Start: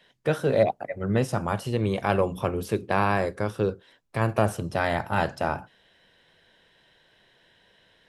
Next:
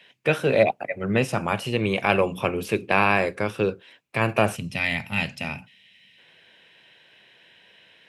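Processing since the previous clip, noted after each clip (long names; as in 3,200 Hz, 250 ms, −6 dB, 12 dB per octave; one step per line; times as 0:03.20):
gain on a spectral selection 0:04.56–0:06.18, 270–1,800 Hz −13 dB
high-pass filter 120 Hz 12 dB per octave
parametric band 2,500 Hz +13 dB 0.56 octaves
level +2 dB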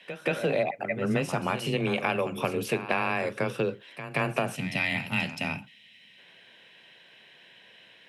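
downward compressor 6 to 1, threshold −23 dBFS, peak gain reduction 10.5 dB
backwards echo 176 ms −11.5 dB
frequency shifter +16 Hz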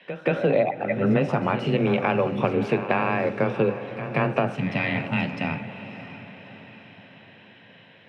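head-to-tape spacing loss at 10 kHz 29 dB
feedback delay with all-pass diffusion 627 ms, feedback 50%, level −13 dB
on a send at −15 dB: convolution reverb RT60 1.2 s, pre-delay 3 ms
on the sum: level +7 dB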